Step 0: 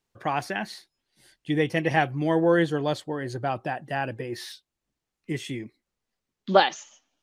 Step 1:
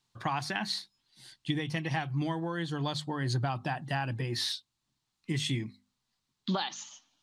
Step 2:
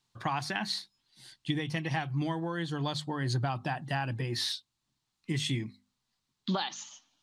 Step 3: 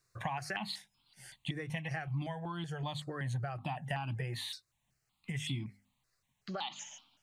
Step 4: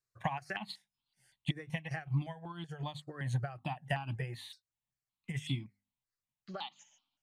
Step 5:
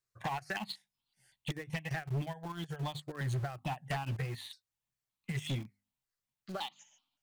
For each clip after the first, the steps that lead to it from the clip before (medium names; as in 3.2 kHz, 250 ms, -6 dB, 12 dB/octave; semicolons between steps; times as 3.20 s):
hum notches 50/100/150/200/250 Hz; compression 16:1, threshold -28 dBFS, peak gain reduction 17 dB; ten-band graphic EQ 125 Hz +11 dB, 250 Hz +4 dB, 500 Hz -7 dB, 1 kHz +9 dB, 4 kHz +12 dB, 8 kHz +6 dB; trim -4 dB
no audible change
compression 4:1, threshold -38 dBFS, peak gain reduction 11 dB; stepped phaser 5.3 Hz 870–1800 Hz; trim +5.5 dB
upward expansion 2.5:1, over -47 dBFS; trim +5.5 dB
in parallel at -11 dB: bit crusher 7-bit; on the sum: hard clipper -31.5 dBFS, distortion -8 dB; trim +1 dB